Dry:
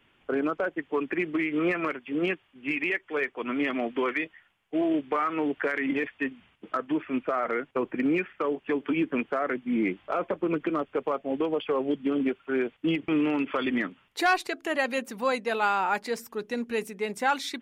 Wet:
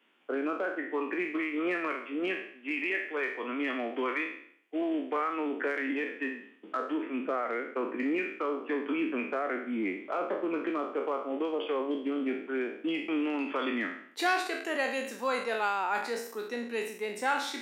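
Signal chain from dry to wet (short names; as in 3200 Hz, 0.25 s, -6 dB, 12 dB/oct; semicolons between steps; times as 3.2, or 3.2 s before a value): spectral trails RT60 0.61 s; steep high-pass 220 Hz 36 dB/oct; gain -5.5 dB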